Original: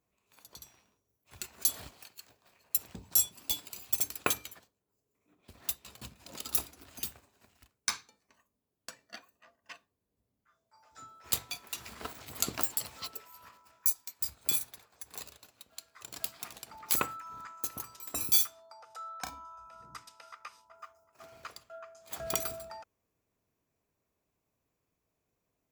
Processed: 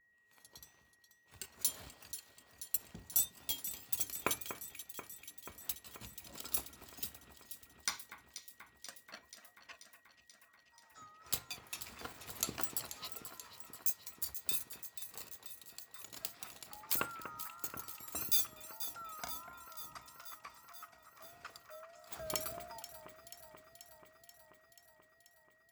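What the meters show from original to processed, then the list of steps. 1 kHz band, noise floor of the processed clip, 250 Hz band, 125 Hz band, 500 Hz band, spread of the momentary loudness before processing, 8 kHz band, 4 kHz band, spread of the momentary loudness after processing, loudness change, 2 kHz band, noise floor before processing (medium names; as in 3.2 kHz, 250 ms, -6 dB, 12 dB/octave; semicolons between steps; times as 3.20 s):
-4.5 dB, -69 dBFS, -4.5 dB, -4.5 dB, -4.5 dB, 21 LU, -5.5 dB, -5.0 dB, 20 LU, -7.0 dB, -4.5 dB, -83 dBFS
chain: vibrato 1.6 Hz 98 cents; echo whose repeats swap between lows and highs 242 ms, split 2.5 kHz, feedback 83%, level -10 dB; whistle 1.9 kHz -64 dBFS; trim -5.5 dB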